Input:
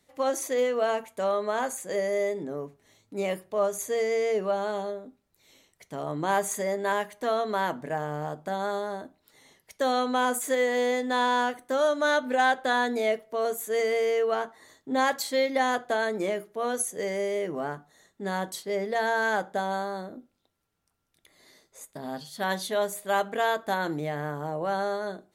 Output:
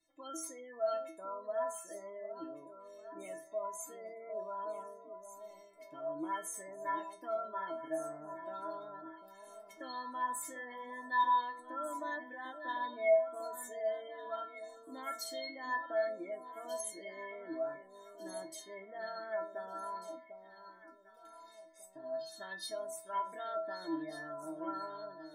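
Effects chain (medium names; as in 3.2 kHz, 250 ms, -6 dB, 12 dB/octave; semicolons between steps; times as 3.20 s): spectral gate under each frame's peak -25 dB strong; in parallel at -2 dB: peak limiter -21.5 dBFS, peak gain reduction 8 dB; on the sum: inharmonic resonator 320 Hz, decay 0.48 s, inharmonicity 0.008; echo whose repeats swap between lows and highs 748 ms, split 880 Hz, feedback 58%, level -8 dB; trim +2.5 dB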